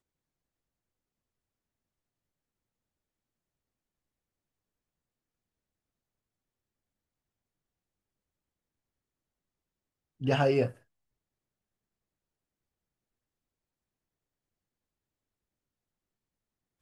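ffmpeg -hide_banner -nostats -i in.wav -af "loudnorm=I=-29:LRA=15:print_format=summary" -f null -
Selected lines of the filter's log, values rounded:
Input Integrated:    -28.6 LUFS
Input True Peak:     -12.7 dBTP
Input LRA:             0.0 LU
Input Threshold:     -39.1 LUFS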